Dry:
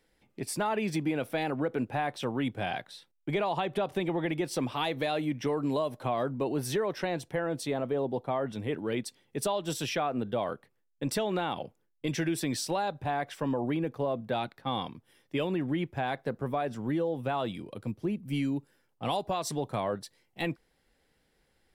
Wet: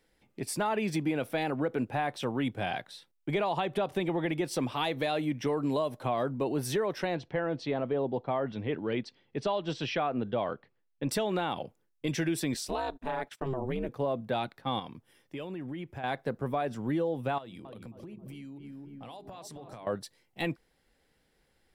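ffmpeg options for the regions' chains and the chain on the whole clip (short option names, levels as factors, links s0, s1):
-filter_complex "[0:a]asettb=1/sr,asplit=3[s0][s1][s2];[s0]atrim=end=7.154[s3];[s1]atrim=start=7.15:end=11.09,asetpts=PTS-STARTPTS,afade=t=in:d=0.004:c=qsin,afade=t=out:st=3.936:d=0.004:c=qsin,lowpass=f=4600:w=0.5412,lowpass=f=4600:w=1.3066,bandreject=f=3600:w=26[s4];[s2]atrim=start=11.086[s5];[s3][s4]acrossfade=d=0.004:c1=hsin:c2=qsin[s6];[s6][s5]acrossfade=d=0.004:c1=qsin:c2=hsin,asettb=1/sr,asplit=3[s7][s8][s9];[s7]atrim=end=12.544[s10];[s8]atrim=start=12.54:end=13.89,asetpts=PTS-STARTPTS,afade=t=in:d=0.004:c=qsin,afade=t=out:st=1.346:d=0.004:c=qsin,agate=range=0.0794:threshold=0.00501:ratio=16:release=100:detection=peak,aeval=exprs='val(0)*sin(2*PI*130*n/s)':c=same[s11];[s9]atrim=start=13.886[s12];[s10][s11]acrossfade=d=0.004:c1=hsin:c2=qsin[s13];[s13][s12]acrossfade=d=0.004:c1=qsin:c2=hsin,asettb=1/sr,asplit=3[s14][s15][s16];[s14]atrim=end=14.794[s17];[s15]atrim=start=14.79:end=16.04,asetpts=PTS-STARTPTS,afade=t=in:d=0.004:c=qsin,afade=t=out:st=1.246:d=0.004:c=qsin,equalizer=f=3900:t=o:w=0.3:g=-3,acompressor=threshold=0.0112:ratio=2.5:attack=3.2:release=140:knee=1:detection=peak[s18];[s16]atrim=start=16.036[s19];[s17][s18]acrossfade=d=0.004:c1=hsin:c2=qsin[s20];[s20][s19]acrossfade=d=0.004:c1=qsin:c2=hsin,asettb=1/sr,asplit=3[s21][s22][s23];[s21]atrim=end=17.384[s24];[s22]atrim=start=17.38:end=19.87,asetpts=PTS-STARTPTS,afade=t=in:d=0.004:c=qsin,afade=t=out:st=2.486:d=0.004:c=qsin,bandreject=f=50:t=h:w=6,bandreject=f=100:t=h:w=6,bandreject=f=150:t=h:w=6,bandreject=f=200:t=h:w=6,bandreject=f=250:t=h:w=6,bandreject=f=300:t=h:w=6,bandreject=f=350:t=h:w=6,bandreject=f=400:t=h:w=6,asplit=2[s25][s26];[s26]adelay=268,lowpass=f=1300:p=1,volume=0.335,asplit=2[s27][s28];[s28]adelay=268,lowpass=f=1300:p=1,volume=0.43,asplit=2[s29][s30];[s30]adelay=268,lowpass=f=1300:p=1,volume=0.43,asplit=2[s31][s32];[s32]adelay=268,lowpass=f=1300:p=1,volume=0.43,asplit=2[s33][s34];[s34]adelay=268,lowpass=f=1300:p=1,volume=0.43[s35];[s25][s27][s29][s31][s33][s35]amix=inputs=6:normalize=0,atrim=end_sample=109809,acompressor=threshold=0.00891:ratio=16:attack=3.2:release=140:knee=1:detection=peak[s36];[s23]atrim=start=19.866[s37];[s24][s36]acrossfade=d=0.004:c1=hsin:c2=qsin[s38];[s38][s37]acrossfade=d=0.004:c1=qsin:c2=hsin"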